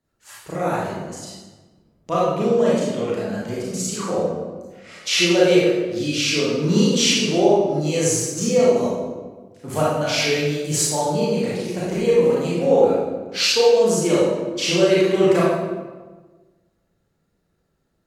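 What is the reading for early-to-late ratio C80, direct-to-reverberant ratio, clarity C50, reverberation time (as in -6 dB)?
1.0 dB, -7.5 dB, -2.5 dB, 1.3 s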